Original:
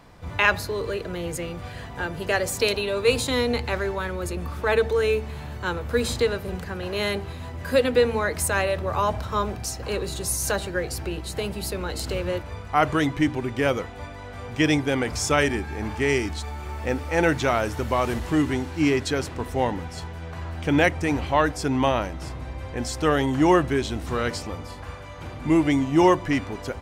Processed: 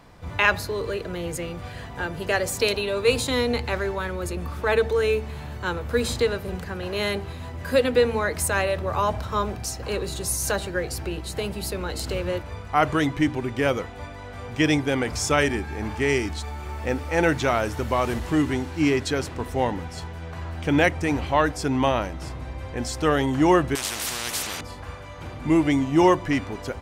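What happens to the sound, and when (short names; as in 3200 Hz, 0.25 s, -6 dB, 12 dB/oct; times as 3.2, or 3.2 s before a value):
23.75–24.61 spectral compressor 10:1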